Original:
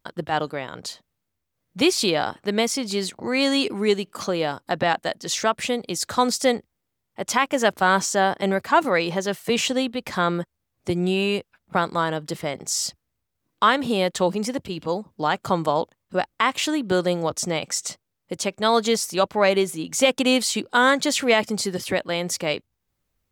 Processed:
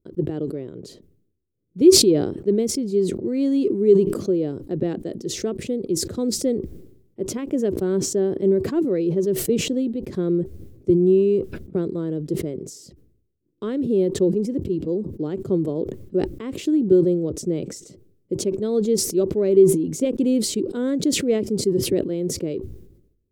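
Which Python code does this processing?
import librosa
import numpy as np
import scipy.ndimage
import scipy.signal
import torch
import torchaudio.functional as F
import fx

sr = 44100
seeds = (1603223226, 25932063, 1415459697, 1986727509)

y = fx.curve_eq(x, sr, hz=(250.0, 380.0, 830.0, 12000.0), db=(0, 8, -27, -20))
y = fx.sustainer(y, sr, db_per_s=69.0)
y = y * librosa.db_to_amplitude(1.5)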